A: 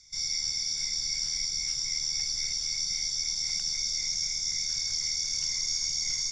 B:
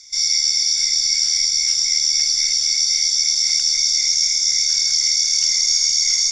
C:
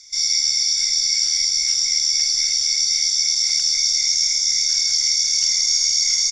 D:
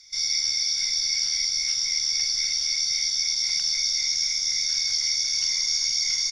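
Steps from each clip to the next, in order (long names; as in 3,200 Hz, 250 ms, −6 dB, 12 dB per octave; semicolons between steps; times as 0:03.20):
tilt shelving filter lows −8.5 dB, about 850 Hz; level +5 dB
double-tracking delay 45 ms −11 dB; level −1.5 dB
parametric band 7,500 Hz −15 dB 0.51 octaves; level −1.5 dB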